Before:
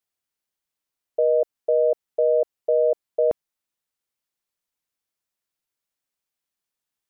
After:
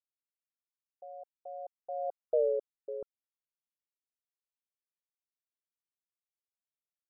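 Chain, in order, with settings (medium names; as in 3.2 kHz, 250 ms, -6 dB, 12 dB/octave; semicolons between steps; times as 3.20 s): Doppler pass-by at 2.35 s, 47 m/s, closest 6.2 m; loudest bins only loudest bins 64; trim -7 dB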